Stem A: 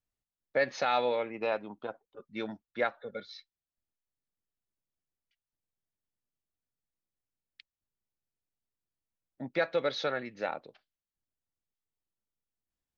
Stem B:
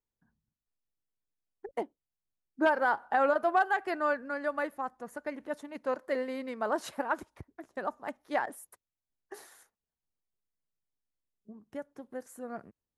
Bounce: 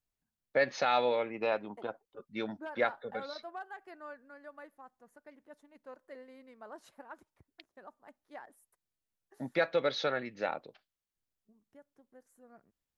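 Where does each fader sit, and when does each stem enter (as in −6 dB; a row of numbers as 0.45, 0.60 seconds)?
0.0, −17.5 decibels; 0.00, 0.00 seconds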